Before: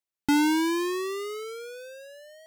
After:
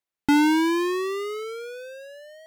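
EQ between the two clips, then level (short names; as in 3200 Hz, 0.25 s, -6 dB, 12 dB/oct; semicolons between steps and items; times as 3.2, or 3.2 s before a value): tone controls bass -1 dB, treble -6 dB; +4.0 dB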